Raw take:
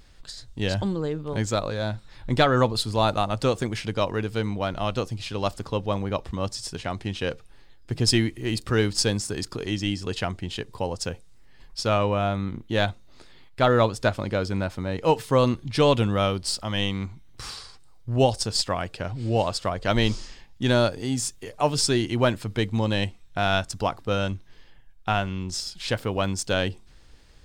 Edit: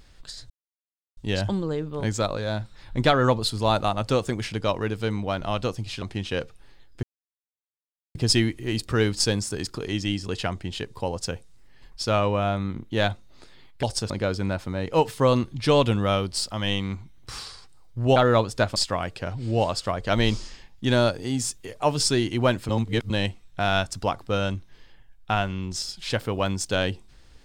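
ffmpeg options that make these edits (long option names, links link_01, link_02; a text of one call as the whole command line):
ffmpeg -i in.wav -filter_complex "[0:a]asplit=10[link_01][link_02][link_03][link_04][link_05][link_06][link_07][link_08][link_09][link_10];[link_01]atrim=end=0.5,asetpts=PTS-STARTPTS,afade=type=out:start_time=0.496:duration=0.004:curve=hsin,apad=pad_dur=0.67[link_11];[link_02]atrim=start=0.5:end=5.352,asetpts=PTS-STARTPTS,afade=type=in:duration=0.004:curve=hsin[link_12];[link_03]atrim=start=6.918:end=7.93,asetpts=PTS-STARTPTS,afade=type=out:start_time=1.008:duration=0.004:curve=hsin,apad=pad_dur=1.12[link_13];[link_04]atrim=start=7.93:end=13.612,asetpts=PTS-STARTPTS,afade=type=in:duration=0.004:curve=hsin[link_14];[link_05]atrim=start=18.268:end=18.542[link_15];[link_06]atrim=start=14.208:end=18.272[link_16];[link_07]atrim=start=13.608:end=14.212[link_17];[link_08]atrim=start=18.538:end=22.472[link_18];[link_09]atrim=start=22.468:end=22.882,asetpts=PTS-STARTPTS,areverse[link_19];[link_10]atrim=start=22.878[link_20];[link_11][link_12]concat=n=2:v=0:a=1[link_21];[link_13][link_14]concat=n=2:v=0:a=1[link_22];[link_21][link_22]acrossfade=duration=0.004:curve1=hsin:curve2=hsin[link_23];[link_23][link_15]acrossfade=duration=0.004:curve1=hsin:curve2=hsin[link_24];[link_24][link_16]acrossfade=duration=0.004:curve1=hsin:curve2=hsin[link_25];[link_25][link_17]acrossfade=duration=0.004:curve1=hsin:curve2=hsin[link_26];[link_26][link_18]acrossfade=duration=0.004:curve1=hsin:curve2=hsin[link_27];[link_27][link_19]acrossfade=duration=0.004:curve1=hsin:curve2=hsin[link_28];[link_28][link_20]acrossfade=duration=0.004:curve1=hsin:curve2=hsin" out.wav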